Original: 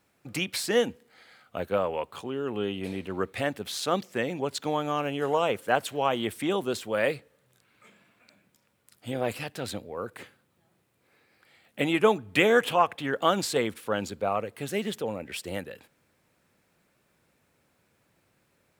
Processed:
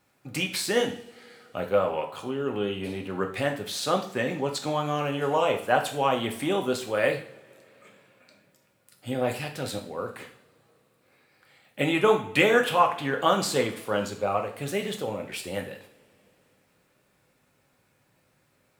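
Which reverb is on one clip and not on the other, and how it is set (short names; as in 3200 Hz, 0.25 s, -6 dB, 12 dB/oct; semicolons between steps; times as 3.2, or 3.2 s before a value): two-slope reverb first 0.48 s, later 3.7 s, from -27 dB, DRR 2.5 dB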